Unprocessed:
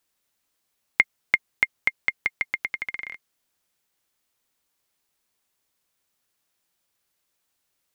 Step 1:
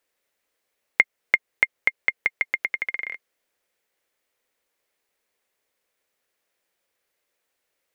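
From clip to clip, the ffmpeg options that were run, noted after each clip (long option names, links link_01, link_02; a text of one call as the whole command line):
ffmpeg -i in.wav -filter_complex "[0:a]equalizer=frequency=125:width_type=o:width=1:gain=-4,equalizer=frequency=500:width_type=o:width=1:gain=12,equalizer=frequency=2000:width_type=o:width=1:gain=8,asplit=2[link_01][link_02];[link_02]acompressor=threshold=-18dB:ratio=6,volume=-3dB[link_03];[link_01][link_03]amix=inputs=2:normalize=0,volume=-8.5dB" out.wav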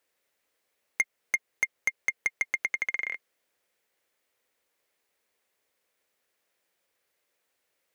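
ffmpeg -i in.wav -af "highpass=47,asoftclip=type=tanh:threshold=-17.5dB" out.wav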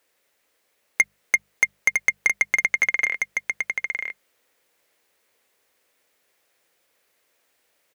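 ffmpeg -i in.wav -af "bandreject=frequency=50:width_type=h:width=6,bandreject=frequency=100:width_type=h:width=6,bandreject=frequency=150:width_type=h:width=6,bandreject=frequency=200:width_type=h:width=6,aecho=1:1:957:0.562,volume=8dB" out.wav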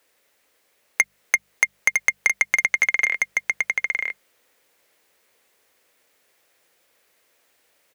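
ffmpeg -i in.wav -filter_complex "[0:a]acrossover=split=400|2500[link_01][link_02][link_03];[link_01]acompressor=threshold=-55dB:ratio=4[link_04];[link_02]acompressor=threshold=-24dB:ratio=4[link_05];[link_03]acompressor=threshold=-23dB:ratio=4[link_06];[link_04][link_05][link_06]amix=inputs=3:normalize=0,volume=4dB" out.wav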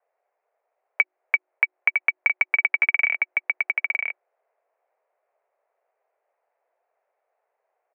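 ffmpeg -i in.wav -af "adynamicsmooth=sensitivity=4.5:basefreq=750,highpass=frequency=240:width_type=q:width=0.5412,highpass=frequency=240:width_type=q:width=1.307,lowpass=frequency=2500:width_type=q:width=0.5176,lowpass=frequency=2500:width_type=q:width=0.7071,lowpass=frequency=2500:width_type=q:width=1.932,afreqshift=170" out.wav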